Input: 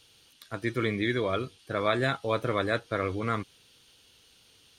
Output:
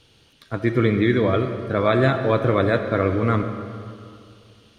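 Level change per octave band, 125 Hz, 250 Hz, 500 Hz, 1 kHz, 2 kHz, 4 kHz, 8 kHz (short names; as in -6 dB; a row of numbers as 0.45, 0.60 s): +12.5 dB, +11.0 dB, +9.5 dB, +6.5 dB, +5.0 dB, +2.0 dB, n/a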